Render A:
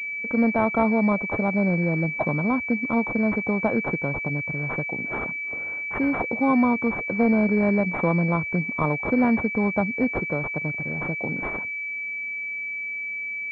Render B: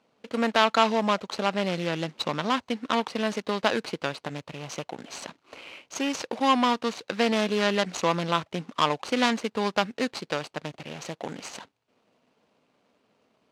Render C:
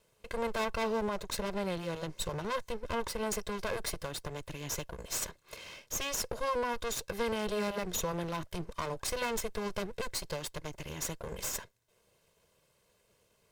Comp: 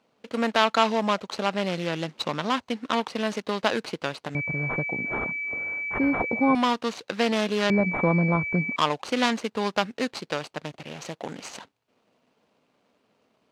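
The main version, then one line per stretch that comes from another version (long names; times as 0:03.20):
B
0:04.35–0:06.55: punch in from A
0:07.70–0:08.76: punch in from A
not used: C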